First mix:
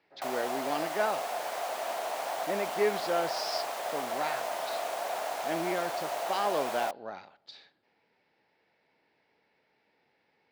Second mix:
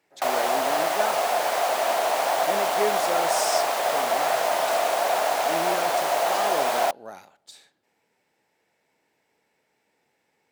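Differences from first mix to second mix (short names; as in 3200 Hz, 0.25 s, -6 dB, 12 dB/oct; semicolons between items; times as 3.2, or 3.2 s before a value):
speech: remove Chebyshev low-pass 4800 Hz, order 4; background +11.0 dB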